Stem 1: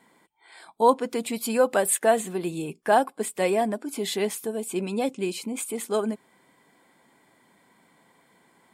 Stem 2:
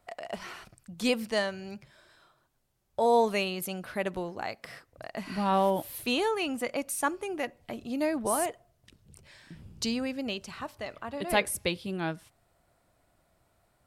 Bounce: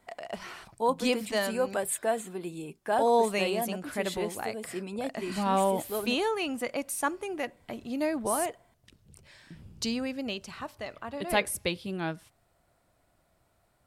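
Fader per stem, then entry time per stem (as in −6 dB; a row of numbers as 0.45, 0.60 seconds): −8.0, −0.5 decibels; 0.00, 0.00 seconds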